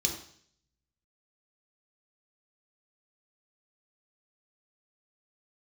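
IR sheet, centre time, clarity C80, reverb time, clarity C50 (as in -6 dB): 21 ms, 10.5 dB, 0.60 s, 7.0 dB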